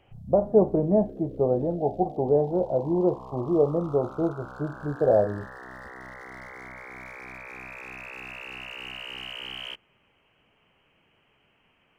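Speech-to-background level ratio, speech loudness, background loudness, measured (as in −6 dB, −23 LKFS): 15.5 dB, −25.0 LKFS, −40.5 LKFS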